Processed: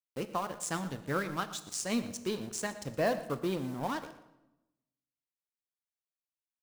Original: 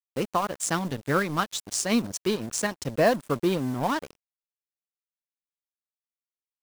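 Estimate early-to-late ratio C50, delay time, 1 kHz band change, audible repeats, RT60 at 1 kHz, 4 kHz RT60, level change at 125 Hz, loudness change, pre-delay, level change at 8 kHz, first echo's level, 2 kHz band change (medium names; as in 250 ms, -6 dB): 12.0 dB, 118 ms, -8.0 dB, 1, 0.90 s, 0.75 s, -8.0 dB, -8.0 dB, 8 ms, -8.0 dB, -16.0 dB, -8.0 dB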